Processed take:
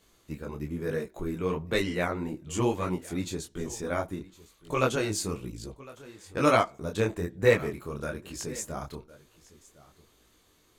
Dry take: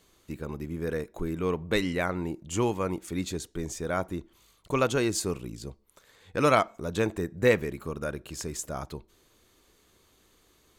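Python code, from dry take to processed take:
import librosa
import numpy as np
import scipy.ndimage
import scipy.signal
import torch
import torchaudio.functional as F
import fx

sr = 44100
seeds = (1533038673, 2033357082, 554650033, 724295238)

p1 = x + fx.echo_single(x, sr, ms=1058, db=-20.5, dry=0)
p2 = fx.detune_double(p1, sr, cents=37)
y = F.gain(torch.from_numpy(p2), 3.0).numpy()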